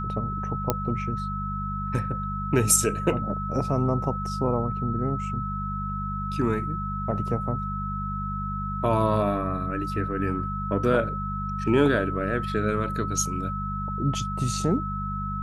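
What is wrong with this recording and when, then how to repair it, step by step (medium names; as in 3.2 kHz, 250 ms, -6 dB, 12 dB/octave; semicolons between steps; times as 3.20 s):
hum 50 Hz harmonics 4 -32 dBFS
whine 1.3 kHz -31 dBFS
0.70 s: pop -7 dBFS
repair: de-click; de-hum 50 Hz, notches 4; band-stop 1.3 kHz, Q 30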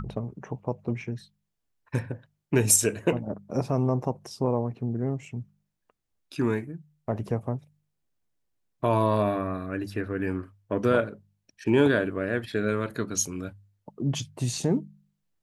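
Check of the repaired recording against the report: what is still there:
0.70 s: pop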